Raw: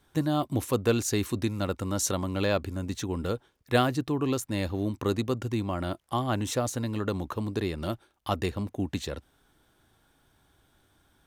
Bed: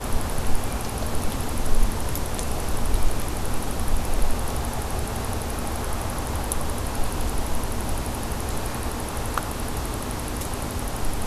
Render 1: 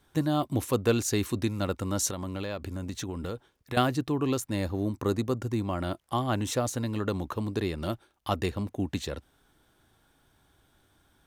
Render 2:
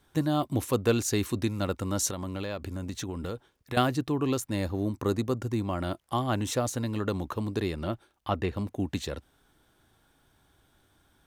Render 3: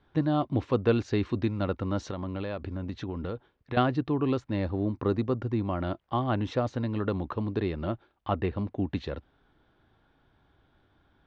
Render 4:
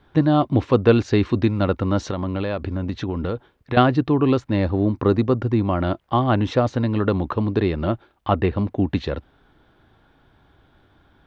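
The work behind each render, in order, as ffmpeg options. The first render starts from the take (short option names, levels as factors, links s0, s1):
-filter_complex "[0:a]asettb=1/sr,asplit=3[s0][s1][s2];[s0]atrim=end=2.094[s3];[s1]atrim=start=2.09:end=3.77,asetpts=PTS-STARTPTS,afade=t=in:d=0.004:c=qsin,afade=t=out:st=1.676:d=0.004:c=qsin,acompressor=threshold=0.0316:ratio=6:attack=3.2:release=140:knee=1:detection=peak[s4];[s2]atrim=start=3.766[s5];[s3][s4]acrossfade=d=0.004:c1=hsin:c2=qsin[s6];[s6][s5]acrossfade=d=0.004:c1=qsin:c2=hsin,asettb=1/sr,asplit=3[s7][s8][s9];[s7]atrim=end=4.564[s10];[s8]atrim=start=4.56:end=5.65,asetpts=PTS-STARTPTS,afade=t=in:d=0.004:c=qsin,afade=t=out:st=1.086:d=0.004:c=qsin,equalizer=f=3000:t=o:w=0.96:g=-6[s11];[s9]atrim=start=5.646[s12];[s10][s11]acrossfade=d=0.004:c1=hsin:c2=qsin[s13];[s13][s12]acrossfade=d=0.004:c1=qsin:c2=hsin"
-filter_complex "[0:a]asettb=1/sr,asplit=3[s0][s1][s2];[s0]atrim=end=7.764[s3];[s1]atrim=start=7.76:end=8.56,asetpts=PTS-STARTPTS,afade=t=in:d=0.004:c=qsin,afade=t=out:st=0.796:d=0.004:c=qsin,acrossover=split=3400[s4][s5];[s5]acompressor=threshold=0.00141:ratio=4:attack=1:release=60[s6];[s4][s6]amix=inputs=2:normalize=0[s7];[s2]atrim=start=8.556[s8];[s3][s7]acrossfade=d=0.004:c1=hsin:c2=qsin[s9];[s9][s8]acrossfade=d=0.004:c1=qsin:c2=hsin"
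-af "lowpass=f=4700:w=0.5412,lowpass=f=4700:w=1.3066,aemphasis=mode=reproduction:type=75fm"
-af "volume=2.82"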